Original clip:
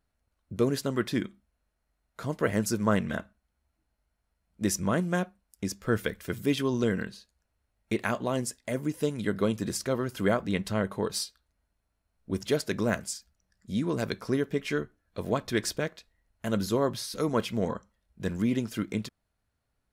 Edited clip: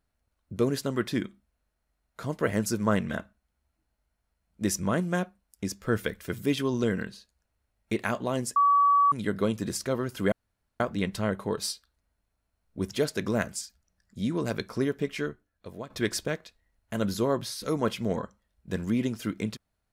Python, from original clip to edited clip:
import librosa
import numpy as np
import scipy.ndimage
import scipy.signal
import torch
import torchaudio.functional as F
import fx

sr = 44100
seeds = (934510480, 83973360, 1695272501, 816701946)

y = fx.edit(x, sr, fx.bleep(start_s=8.56, length_s=0.56, hz=1140.0, db=-17.5),
    fx.insert_room_tone(at_s=10.32, length_s=0.48),
    fx.fade_out_to(start_s=14.52, length_s=0.9, floor_db=-14.0), tone=tone)